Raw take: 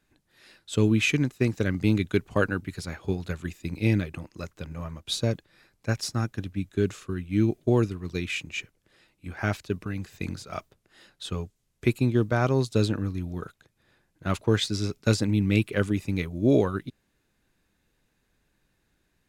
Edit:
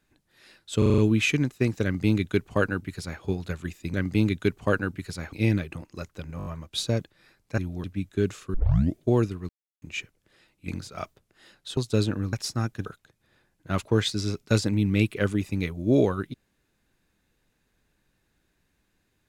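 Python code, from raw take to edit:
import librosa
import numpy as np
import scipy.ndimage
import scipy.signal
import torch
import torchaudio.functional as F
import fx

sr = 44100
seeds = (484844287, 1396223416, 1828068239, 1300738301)

y = fx.edit(x, sr, fx.stutter(start_s=0.78, slice_s=0.04, count=6),
    fx.duplicate(start_s=1.63, length_s=1.38, to_s=3.74),
    fx.stutter(start_s=4.8, slice_s=0.02, count=5),
    fx.swap(start_s=5.92, length_s=0.52, other_s=13.15, other_length_s=0.26),
    fx.tape_start(start_s=7.14, length_s=0.44),
    fx.silence(start_s=8.09, length_s=0.33),
    fx.cut(start_s=9.28, length_s=0.95),
    fx.cut(start_s=11.32, length_s=1.27), tone=tone)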